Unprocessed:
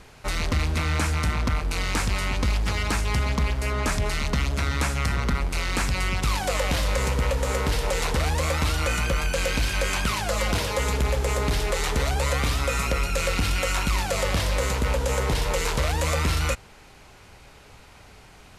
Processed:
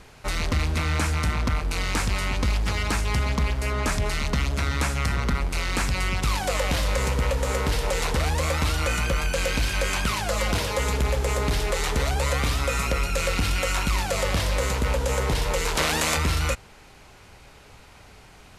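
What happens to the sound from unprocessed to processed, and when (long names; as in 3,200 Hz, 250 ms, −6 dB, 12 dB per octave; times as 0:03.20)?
0:15.75–0:16.16: ceiling on every frequency bin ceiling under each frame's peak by 20 dB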